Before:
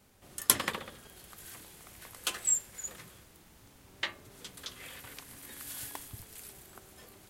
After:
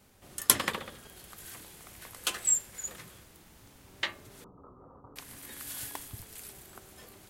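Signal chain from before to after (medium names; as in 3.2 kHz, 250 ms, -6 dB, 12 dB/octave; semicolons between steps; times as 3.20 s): 4.44–5.16 s: rippled Chebyshev low-pass 1.3 kHz, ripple 3 dB; trim +2 dB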